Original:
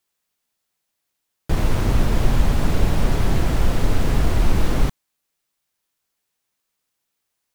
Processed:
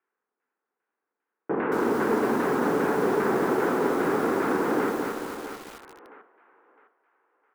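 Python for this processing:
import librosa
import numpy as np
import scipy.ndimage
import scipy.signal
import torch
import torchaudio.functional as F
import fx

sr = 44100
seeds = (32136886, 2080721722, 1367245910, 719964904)

y = fx.cabinet(x, sr, low_hz=250.0, low_slope=24, high_hz=2600.0, hz=(430.0, 630.0, 1500.0), db=(6, -8, 5))
y = fx.doubler(y, sr, ms=46.0, db=-13.5)
y = fx.filter_lfo_lowpass(y, sr, shape='saw_down', hz=2.5, low_hz=830.0, high_hz=1700.0, q=1.0)
y = fx.echo_thinned(y, sr, ms=659, feedback_pct=36, hz=450.0, wet_db=-9)
y = fx.echo_crushed(y, sr, ms=224, feedback_pct=55, bits=7, wet_db=-3)
y = y * 10.0 ** (1.5 / 20.0)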